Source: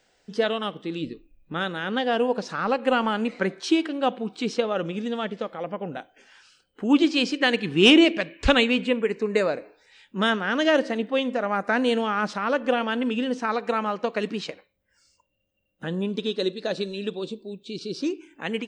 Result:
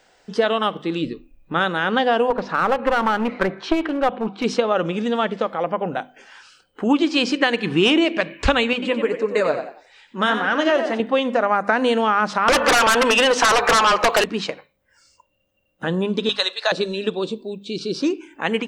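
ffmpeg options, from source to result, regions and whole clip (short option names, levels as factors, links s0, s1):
-filter_complex "[0:a]asettb=1/sr,asplit=3[s0][s1][s2];[s0]atrim=end=2.304[s3];[s1]atrim=start=2.3:end=4.44,asetpts=PTS-STARTPTS,afade=t=in:d=0.004:c=qsin,afade=t=out:st=2.136:d=0.004:c=qsin,lowpass=2800,aeval=exprs='clip(val(0),-1,0.0531)':c=same[s4];[s2]atrim=start=4.436[s5];[s3][s4]acrossfade=d=0.004:c1=hsin:c2=qsin[s6];[s6][s5]acrossfade=d=0.004:c1=qsin:c2=hsin,asettb=1/sr,asplit=3[s7][s8][s9];[s7]atrim=end=8.734[s10];[s8]atrim=start=8.73:end=11,asetpts=PTS-STARTPTS,afade=t=in:d=0.004:c=qsin,afade=t=out:st=2.266:d=0.004:c=qsin,flanger=delay=1.3:depth=7.5:regen=49:speed=1.7:shape=sinusoidal,asplit=4[s11][s12][s13][s14];[s12]adelay=91,afreqshift=50,volume=0.316[s15];[s13]adelay=182,afreqshift=100,volume=0.0944[s16];[s14]adelay=273,afreqshift=150,volume=0.0285[s17];[s11][s15][s16][s17]amix=inputs=4:normalize=0,atrim=end_sample=100107[s18];[s9]atrim=start=10.996[s19];[s10][s18]acrossfade=d=0.004:c1=hsin:c2=qsin[s20];[s20][s19]acrossfade=d=0.004:c1=qsin:c2=hsin,asettb=1/sr,asplit=3[s21][s22][s23];[s21]atrim=end=12.484[s24];[s22]atrim=start=12.48:end=14.24,asetpts=PTS-STARTPTS,afade=t=in:d=0.004:c=qsin,afade=t=out:st=1.756:d=0.004:c=qsin,highpass=630,aeval=exprs='0.237*sin(PI/2*6.31*val(0)/0.237)':c=same[s25];[s23]atrim=start=14.236[s26];[s24][s25]acrossfade=d=0.004:c1=hsin:c2=qsin[s27];[s27][s26]acrossfade=d=0.004:c1=qsin:c2=hsin,asettb=1/sr,asplit=3[s28][s29][s30];[s28]atrim=end=16.294[s31];[s29]atrim=start=16.29:end=16.72,asetpts=PTS-STARTPTS,afade=t=in:d=0.004:c=qsin,afade=t=out:st=0.426:d=0.004:c=qsin,highpass=f=780:w=0.5412,highpass=f=780:w=1.3066,acontrast=63[s32];[s30]atrim=start=16.716[s33];[s31][s32]acrossfade=d=0.004:c1=hsin:c2=qsin[s34];[s34][s33]acrossfade=d=0.004:c1=qsin:c2=hsin,equalizer=f=1000:t=o:w=1.4:g=6,bandreject=f=50:t=h:w=6,bandreject=f=100:t=h:w=6,bandreject=f=150:t=h:w=6,bandreject=f=200:t=h:w=6,bandreject=f=250:t=h:w=6,acompressor=threshold=0.1:ratio=5,volume=2"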